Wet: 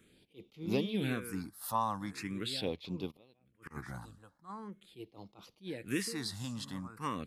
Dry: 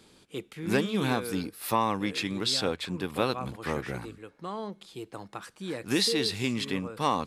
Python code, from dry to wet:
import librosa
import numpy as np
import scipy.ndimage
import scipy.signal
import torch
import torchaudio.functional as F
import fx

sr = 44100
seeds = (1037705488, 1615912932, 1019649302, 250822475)

y = fx.gate_flip(x, sr, shuts_db=-26.0, range_db=-29, at=(3.1, 3.7), fade=0.02)
y = fx.phaser_stages(y, sr, stages=4, low_hz=380.0, high_hz=1700.0, hz=0.42, feedback_pct=5)
y = fx.attack_slew(y, sr, db_per_s=280.0)
y = y * 10.0 ** (-5.0 / 20.0)